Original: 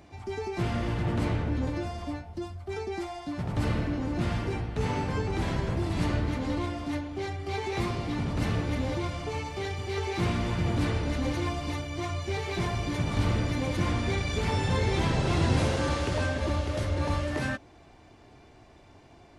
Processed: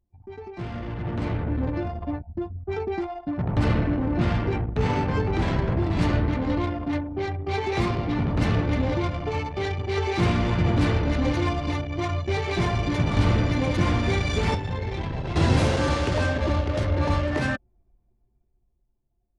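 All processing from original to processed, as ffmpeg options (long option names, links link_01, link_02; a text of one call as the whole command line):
ffmpeg -i in.wav -filter_complex "[0:a]asettb=1/sr,asplit=3[link_01][link_02][link_03];[link_01]atrim=end=14.544[link_04];[link_02]atrim=start=14.54:end=15.36,asetpts=PTS-STARTPTS,afade=type=in:duration=0.004:curve=qsin,afade=type=out:start_time=0.816:duration=0.004:curve=qsin,acrossover=split=110|650[link_05][link_06][link_07];[link_05]acompressor=threshold=-35dB:ratio=4[link_08];[link_06]acompressor=threshold=-39dB:ratio=4[link_09];[link_07]acompressor=threshold=-39dB:ratio=4[link_10];[link_08][link_09][link_10]amix=inputs=3:normalize=0,equalizer=frequency=1300:width_type=o:width=0.38:gain=-4[link_11];[link_03]atrim=start=15.356[link_12];[link_04][link_11]acrossfade=duration=0.004:curve1=hsin:curve2=qsin[link_13];[link_13][link_12]acrossfade=duration=0.004:curve1=qsin:curve2=hsin,anlmdn=2.51,dynaudnorm=framelen=140:gausssize=21:maxgain=11.5dB,volume=-5dB" out.wav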